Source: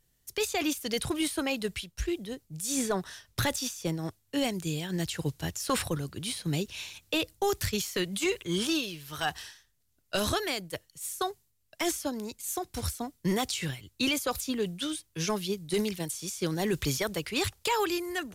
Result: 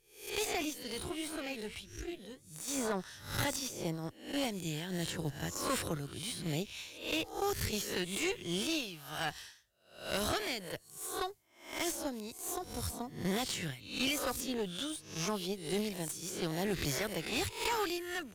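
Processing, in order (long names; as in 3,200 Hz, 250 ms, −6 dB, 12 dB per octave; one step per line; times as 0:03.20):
peak hold with a rise ahead of every peak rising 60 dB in 0.51 s
tube saturation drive 21 dB, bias 0.75
0:00.65–0:02.68: flanger 1.5 Hz, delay 5.8 ms, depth 9.4 ms, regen +63%
level −3 dB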